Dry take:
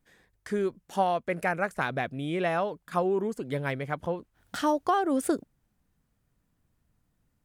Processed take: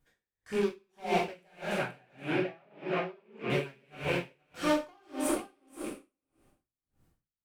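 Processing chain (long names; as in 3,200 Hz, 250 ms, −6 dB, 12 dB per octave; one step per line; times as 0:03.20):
loose part that buzzes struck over −44 dBFS, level −24 dBFS
gain into a clipping stage and back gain 25.5 dB
0:01.75–0:03.50: band-pass filter 110–2,500 Hz
single-tap delay 476 ms −7 dB
coupled-rooms reverb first 0.94 s, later 3 s, from −27 dB, DRR −5 dB
tremolo with a sine in dB 1.7 Hz, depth 37 dB
level −3 dB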